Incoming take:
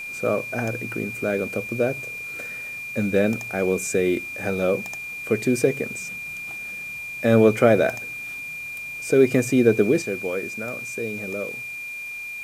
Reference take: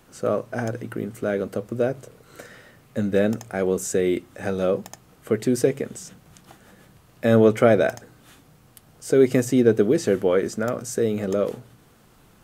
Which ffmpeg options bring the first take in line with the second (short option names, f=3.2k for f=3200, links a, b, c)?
-af "bandreject=f=2.4k:w=30,afwtdn=0.004,asetnsamples=n=441:p=0,asendcmd='10.02 volume volume 8dB',volume=0dB"